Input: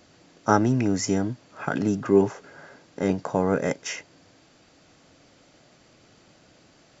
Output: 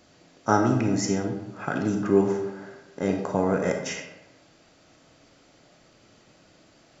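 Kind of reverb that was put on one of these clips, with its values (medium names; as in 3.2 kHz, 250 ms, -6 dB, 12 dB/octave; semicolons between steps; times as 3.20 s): algorithmic reverb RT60 1 s, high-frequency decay 0.6×, pre-delay 0 ms, DRR 3.5 dB; trim -2 dB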